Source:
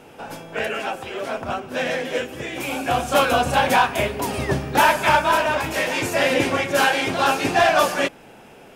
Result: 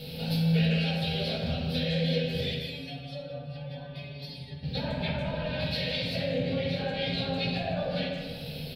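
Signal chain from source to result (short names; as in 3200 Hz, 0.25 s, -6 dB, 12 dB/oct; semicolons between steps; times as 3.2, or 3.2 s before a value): G.711 law mismatch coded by mu; de-hum 46.79 Hz, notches 7; treble ducked by the level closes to 1100 Hz, closed at -13.5 dBFS; EQ curve 190 Hz 0 dB, 360 Hz -22 dB, 510 Hz -8 dB, 1100 Hz -30 dB, 2900 Hz -4 dB, 4300 Hz +12 dB, 6700 Hz -23 dB, 14000 Hz +6 dB; compressor 6:1, threshold -37 dBFS, peak gain reduction 16 dB; 2.54–4.63 metallic resonator 140 Hz, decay 0.24 s, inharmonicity 0.002; speakerphone echo 0.15 s, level -8 dB; reverb RT60 1.4 s, pre-delay 3 ms, DRR -3 dB; gain +4 dB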